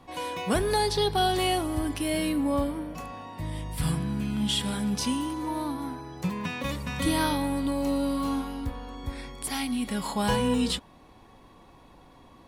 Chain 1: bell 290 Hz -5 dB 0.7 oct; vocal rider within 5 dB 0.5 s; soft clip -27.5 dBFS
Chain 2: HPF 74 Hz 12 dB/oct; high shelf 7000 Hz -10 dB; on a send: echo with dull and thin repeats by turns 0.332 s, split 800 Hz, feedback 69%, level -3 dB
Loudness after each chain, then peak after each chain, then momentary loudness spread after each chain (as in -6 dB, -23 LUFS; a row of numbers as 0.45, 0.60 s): -33.5, -27.5 LUFS; -27.5, -11.5 dBFS; 4, 10 LU